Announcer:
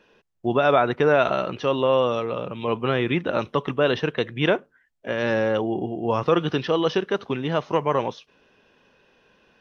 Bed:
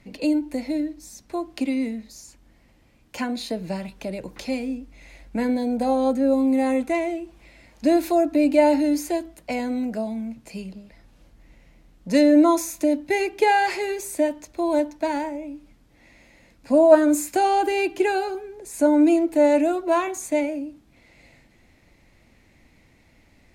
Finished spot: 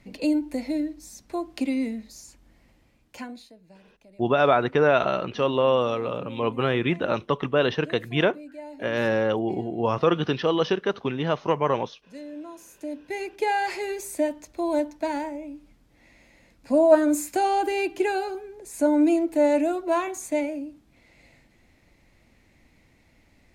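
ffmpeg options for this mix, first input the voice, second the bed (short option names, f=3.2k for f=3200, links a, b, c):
-filter_complex "[0:a]adelay=3750,volume=-1dB[a];[1:a]volume=19dB,afade=t=out:st=2.67:d=0.85:silence=0.0794328,afade=t=in:st=12.55:d=1.42:silence=0.0944061[b];[a][b]amix=inputs=2:normalize=0"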